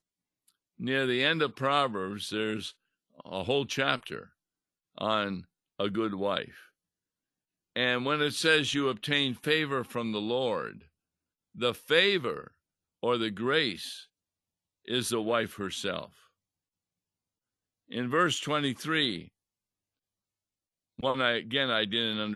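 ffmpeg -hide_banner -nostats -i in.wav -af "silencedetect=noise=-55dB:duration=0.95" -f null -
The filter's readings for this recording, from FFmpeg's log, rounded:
silence_start: 6.69
silence_end: 7.76 | silence_duration: 1.07
silence_start: 16.27
silence_end: 17.89 | silence_duration: 1.63
silence_start: 19.28
silence_end: 20.98 | silence_duration: 1.70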